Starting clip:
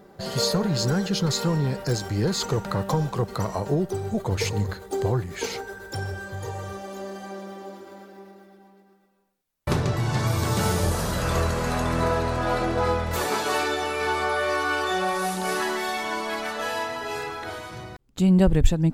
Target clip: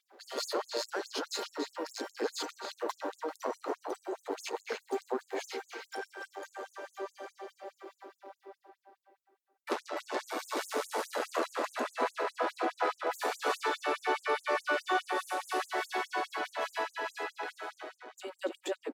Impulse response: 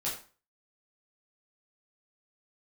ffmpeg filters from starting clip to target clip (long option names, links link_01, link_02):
-filter_complex "[0:a]aeval=exprs='if(lt(val(0),0),0.447*val(0),val(0))':channel_layout=same,highshelf=frequency=4000:gain=-10.5,asplit=2[link_01][link_02];[link_02]adelay=286,lowpass=frequency=2900:poles=1,volume=-3dB,asplit=2[link_03][link_04];[link_04]adelay=286,lowpass=frequency=2900:poles=1,volume=0.37,asplit=2[link_05][link_06];[link_06]adelay=286,lowpass=frequency=2900:poles=1,volume=0.37,asplit=2[link_07][link_08];[link_08]adelay=286,lowpass=frequency=2900:poles=1,volume=0.37,asplit=2[link_09][link_10];[link_10]adelay=286,lowpass=frequency=2900:poles=1,volume=0.37[link_11];[link_01][link_03][link_05][link_07][link_09][link_11]amix=inputs=6:normalize=0,afftfilt=real='re*gte(b*sr/1024,230*pow(6700/230,0.5+0.5*sin(2*PI*4.8*pts/sr)))':imag='im*gte(b*sr/1024,230*pow(6700/230,0.5+0.5*sin(2*PI*4.8*pts/sr)))':win_size=1024:overlap=0.75,volume=-1.5dB"